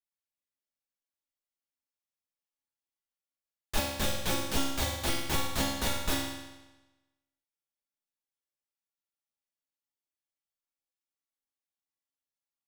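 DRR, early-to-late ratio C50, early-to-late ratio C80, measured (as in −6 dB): −6.5 dB, 1.0 dB, 3.5 dB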